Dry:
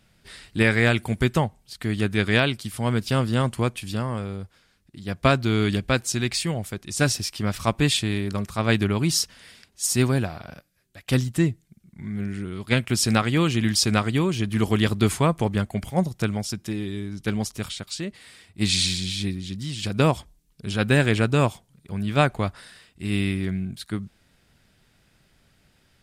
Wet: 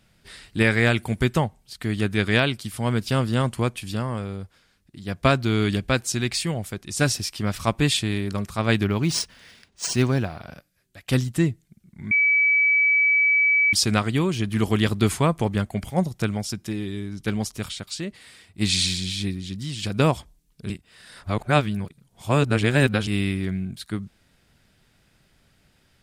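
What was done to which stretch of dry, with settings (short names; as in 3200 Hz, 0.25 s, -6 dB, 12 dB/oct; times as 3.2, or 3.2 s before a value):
8.82–10.42 decimation joined by straight lines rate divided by 3×
12.11–13.73 bleep 2290 Hz -15.5 dBFS
20.7–23.07 reverse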